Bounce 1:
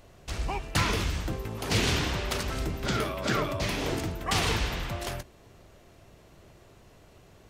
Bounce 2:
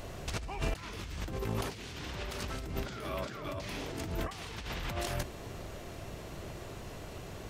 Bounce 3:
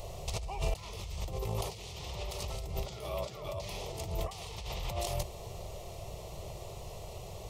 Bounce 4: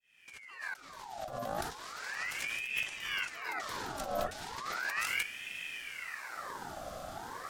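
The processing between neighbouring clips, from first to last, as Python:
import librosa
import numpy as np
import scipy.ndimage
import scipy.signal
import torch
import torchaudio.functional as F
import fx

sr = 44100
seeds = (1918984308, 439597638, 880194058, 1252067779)

y1 = fx.over_compress(x, sr, threshold_db=-40.0, ratio=-1.0)
y1 = y1 * 10.0 ** (1.5 / 20.0)
y2 = fx.fixed_phaser(y1, sr, hz=650.0, stages=4)
y2 = y2 * 10.0 ** (2.5 / 20.0)
y3 = fx.fade_in_head(y2, sr, length_s=2.14)
y3 = fx.ring_lfo(y3, sr, carrier_hz=1600.0, swing_pct=60, hz=0.36)
y3 = y3 * 10.0 ** (3.0 / 20.0)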